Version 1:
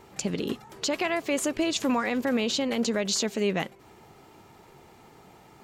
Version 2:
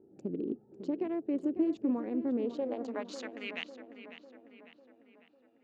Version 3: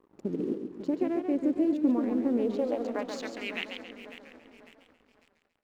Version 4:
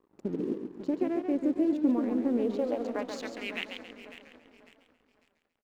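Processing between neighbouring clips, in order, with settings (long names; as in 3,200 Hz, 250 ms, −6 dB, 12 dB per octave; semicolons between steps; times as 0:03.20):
adaptive Wiener filter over 41 samples; band-pass filter sweep 320 Hz → 2,900 Hz, 0:02.33–0:03.64; feedback echo with a low-pass in the loop 549 ms, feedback 53%, low-pass 3,500 Hz, level −11 dB
dead-zone distortion −59.5 dBFS; feedback echo with a swinging delay time 138 ms, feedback 43%, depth 162 cents, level −6.5 dB; level +4.5 dB
in parallel at −4.5 dB: dead-zone distortion −48 dBFS; on the sum: single-tap delay 581 ms −23.5 dB; level −4.5 dB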